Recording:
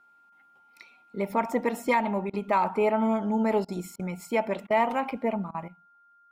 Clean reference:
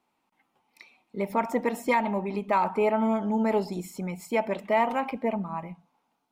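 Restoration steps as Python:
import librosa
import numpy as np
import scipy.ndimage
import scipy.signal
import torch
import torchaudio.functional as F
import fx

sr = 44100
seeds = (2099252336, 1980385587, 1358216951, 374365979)

y = fx.notch(x, sr, hz=1400.0, q=30.0)
y = fx.fix_interpolate(y, sr, at_s=(2.3, 3.65, 3.96, 4.67, 5.51), length_ms=33.0)
y = fx.gain(y, sr, db=fx.steps((0.0, 0.0), (5.68, 11.5)))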